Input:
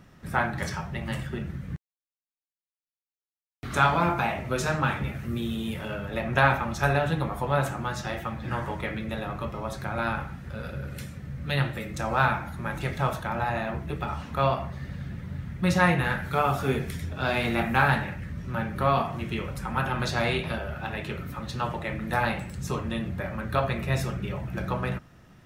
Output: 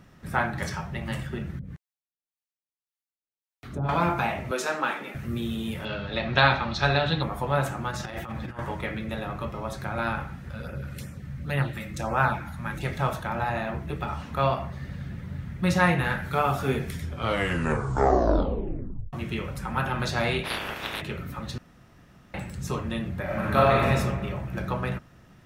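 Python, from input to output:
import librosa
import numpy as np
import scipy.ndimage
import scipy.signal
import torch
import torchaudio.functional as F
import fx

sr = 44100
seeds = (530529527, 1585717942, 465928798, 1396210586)

y = fx.harmonic_tremolo(x, sr, hz=1.8, depth_pct=100, crossover_hz=530.0, at=(1.59, 3.89))
y = fx.highpass(y, sr, hz=270.0, slope=24, at=(4.51, 5.15))
y = fx.lowpass_res(y, sr, hz=4100.0, q=5.4, at=(5.85, 7.23))
y = fx.over_compress(y, sr, threshold_db=-34.0, ratio=-0.5, at=(7.91, 8.59))
y = fx.filter_lfo_notch(y, sr, shape='sine', hz=fx.line((10.51, 3.2), (12.83, 1.0)), low_hz=370.0, high_hz=4200.0, q=1.4, at=(10.51, 12.83), fade=0.02)
y = fx.spec_clip(y, sr, under_db=28, at=(20.44, 21.0), fade=0.02)
y = fx.reverb_throw(y, sr, start_s=23.24, length_s=0.62, rt60_s=1.5, drr_db=-6.5)
y = fx.edit(y, sr, fx.tape_stop(start_s=16.99, length_s=2.14),
    fx.room_tone_fill(start_s=21.58, length_s=0.76), tone=tone)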